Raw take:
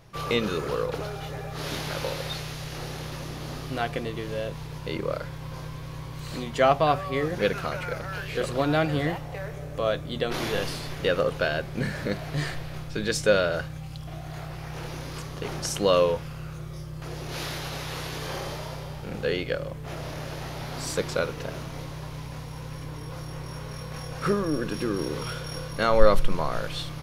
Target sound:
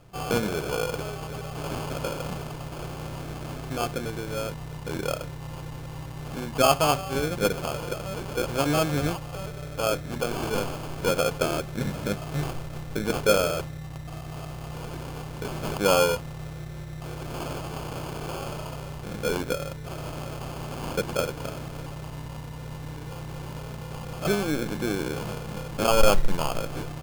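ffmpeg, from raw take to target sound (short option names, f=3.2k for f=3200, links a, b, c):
-af "acrusher=samples=23:mix=1:aa=0.000001,volume=9.5dB,asoftclip=hard,volume=-9.5dB"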